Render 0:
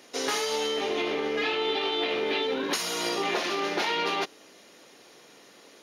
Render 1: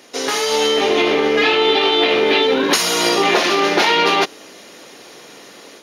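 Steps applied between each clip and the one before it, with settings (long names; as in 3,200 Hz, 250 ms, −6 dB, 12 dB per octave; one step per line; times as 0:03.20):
automatic gain control gain up to 6 dB
level +7 dB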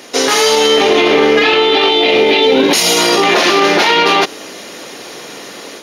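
gain on a spectral selection 0:01.89–0:02.98, 940–1,900 Hz −7 dB
boost into a limiter +11 dB
level −1 dB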